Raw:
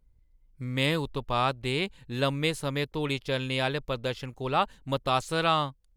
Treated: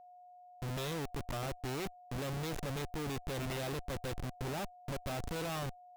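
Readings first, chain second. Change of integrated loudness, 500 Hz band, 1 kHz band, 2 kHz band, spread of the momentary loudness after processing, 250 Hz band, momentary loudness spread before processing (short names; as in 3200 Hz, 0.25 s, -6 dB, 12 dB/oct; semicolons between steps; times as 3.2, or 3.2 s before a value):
-11.0 dB, -10.5 dB, -13.5 dB, -12.5 dB, 4 LU, -9.0 dB, 6 LU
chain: envelope flanger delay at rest 7 ms, full sweep at -26 dBFS; Schmitt trigger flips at -37 dBFS; whine 720 Hz -48 dBFS; gain -6 dB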